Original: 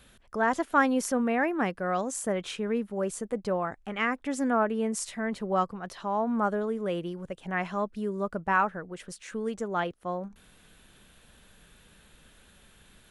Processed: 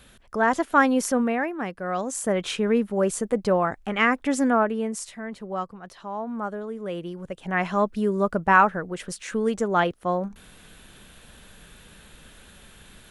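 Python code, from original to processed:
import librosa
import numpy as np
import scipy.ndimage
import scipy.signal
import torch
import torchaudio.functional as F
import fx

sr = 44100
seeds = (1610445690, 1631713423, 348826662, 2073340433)

y = fx.gain(x, sr, db=fx.line((1.21, 4.5), (1.57, -3.0), (2.52, 7.5), (4.33, 7.5), (5.23, -3.5), (6.64, -3.5), (7.82, 8.0)))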